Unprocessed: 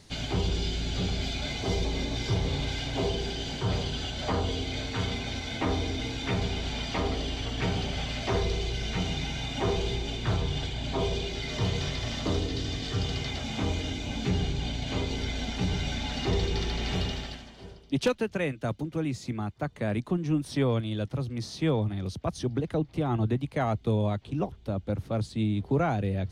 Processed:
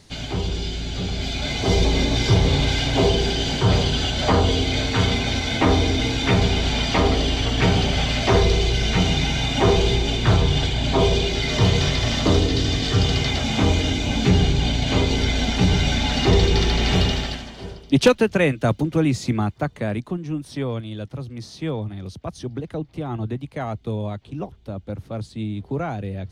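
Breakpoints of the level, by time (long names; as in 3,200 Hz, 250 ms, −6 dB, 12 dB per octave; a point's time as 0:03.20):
0:01.04 +3 dB
0:01.83 +11 dB
0:19.39 +11 dB
0:20.24 −0.5 dB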